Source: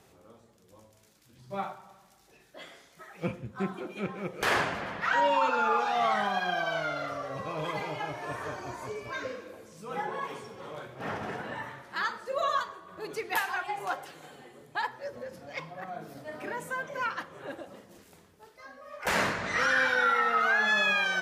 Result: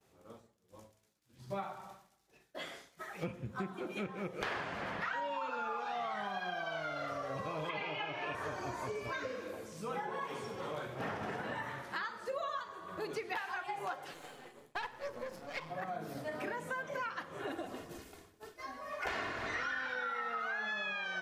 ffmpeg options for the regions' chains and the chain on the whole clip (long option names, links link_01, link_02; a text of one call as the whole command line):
ffmpeg -i in.wav -filter_complex "[0:a]asettb=1/sr,asplit=3[link_01][link_02][link_03];[link_01]atrim=end=7.694[link_04];[link_02]atrim=start=7.69:end=8.35,asetpts=PTS-STARTPTS,afade=type=in:duration=0.004:curve=qsin,afade=type=out:start_time=0.656:duration=0.004:curve=qsin,highpass=150,lowpass=4200,equalizer=frequency=2700:width=2.3:gain=12.5[link_05];[link_03]atrim=start=8.346[link_06];[link_04][link_05]acrossfade=duration=0.004:curve1=hsin:curve2=qsin[link_07];[link_07][link_06]acrossfade=duration=0.004:curve1=qsin:curve2=hsin,asettb=1/sr,asplit=3[link_08][link_09][link_10];[link_08]atrim=end=14.134[link_11];[link_09]atrim=start=14.13:end=15.7,asetpts=PTS-STARTPTS,afade=type=in:duration=0.004:curve=qsin,afade=type=out:start_time=1.566:duration=0.004:curve=qsin,aeval=exprs='if(lt(val(0),0),0.251*val(0),val(0))':channel_layout=same,lowshelf=frequency=110:gain=-9,bandreject=frequency=50:width_type=h:width=6,bandreject=frequency=100:width_type=h:width=6,bandreject=frequency=150:width_type=h:width=6,bandreject=frequency=200:width_type=h:width=6,bandreject=frequency=250:width_type=h:width=6,bandreject=frequency=300:width_type=h:width=6,bandreject=frequency=350:width_type=h:width=6[link_12];[link_10]atrim=start=15.696[link_13];[link_11][link_12]acrossfade=duration=0.004:curve1=hsin:curve2=qsin[link_14];[link_14][link_13]acrossfade=duration=0.004:curve1=qsin:curve2=hsin,asettb=1/sr,asplit=3[link_15][link_16][link_17];[link_15]atrim=end=17.394[link_18];[link_16]atrim=start=17.39:end=19.86,asetpts=PTS-STARTPTS,afade=type=in:duration=0.004:curve=qsin,afade=type=out:start_time=2.466:duration=0.004:curve=qsin,aecho=1:1:2.8:0.65,atrim=end_sample=108927,asplit=7[link_19][link_20][link_21][link_22][link_23][link_24][link_25];[link_20]adelay=150,afreqshift=-85,volume=-14dB[link_26];[link_21]adelay=300,afreqshift=-170,volume=-18.9dB[link_27];[link_22]adelay=450,afreqshift=-255,volume=-23.8dB[link_28];[link_23]adelay=600,afreqshift=-340,volume=-28.6dB[link_29];[link_24]adelay=750,afreqshift=-425,volume=-33.5dB[link_30];[link_25]adelay=900,afreqshift=-510,volume=-38.4dB[link_31];[link_19][link_26][link_27][link_28][link_29][link_30][link_31]amix=inputs=7:normalize=0,atrim=end_sample=108927[link_32];[link_17]atrim=start=19.856[link_33];[link_18][link_32]acrossfade=duration=0.004:curve1=hsin:curve2=qsin[link_34];[link_34][link_33]acrossfade=duration=0.004:curve1=qsin:curve2=hsin,acrossover=split=5100[link_35][link_36];[link_36]acompressor=threshold=-56dB:ratio=4:attack=1:release=60[link_37];[link_35][link_37]amix=inputs=2:normalize=0,agate=range=-33dB:threshold=-51dB:ratio=3:detection=peak,acompressor=threshold=-39dB:ratio=8,volume=3dB" out.wav